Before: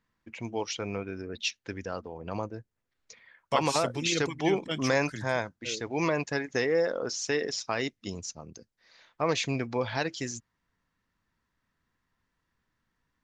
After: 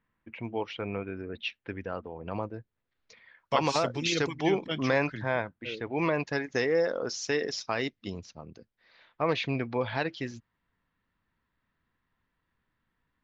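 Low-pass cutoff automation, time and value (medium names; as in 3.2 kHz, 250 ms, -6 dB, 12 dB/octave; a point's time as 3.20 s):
low-pass 24 dB/octave
1.96 s 3.1 kHz
3.73 s 6 kHz
4.37 s 6 kHz
5.35 s 3.2 kHz
5.95 s 3.2 kHz
6.45 s 6.2 kHz
7.49 s 6.2 kHz
8.30 s 3.9 kHz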